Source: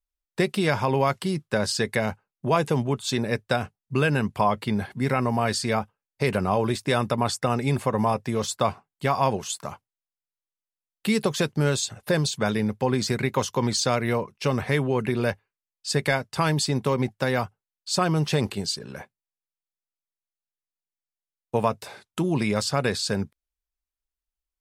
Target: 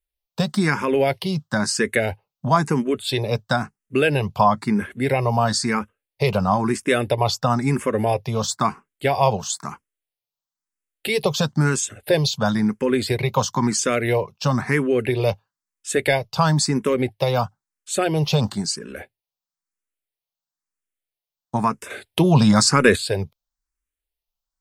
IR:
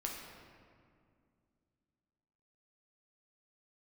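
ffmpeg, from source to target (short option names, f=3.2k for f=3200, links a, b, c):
-filter_complex "[0:a]asettb=1/sr,asplit=3[a][b][c];[a]atrim=end=21.904[d];[b]atrim=start=21.9:end=22.96,asetpts=PTS-STARTPTS,afade=t=in:d=0.004:c=qsin,afade=t=out:st=1.056:d=0.004:c=qsin,acontrast=78[e];[c]atrim=start=22.956[f];[d][e]acrossfade=d=0.004:c1=hsin:c2=qsin[g];[g][f]acrossfade=d=0.004:c1=qsin:c2=hsin,asplit=2[h][i];[i]afreqshift=1[j];[h][j]amix=inputs=2:normalize=1,volume=6.5dB"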